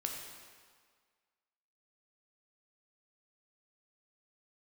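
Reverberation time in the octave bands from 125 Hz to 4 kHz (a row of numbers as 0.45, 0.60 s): 1.4, 1.6, 1.7, 1.8, 1.6, 1.5 s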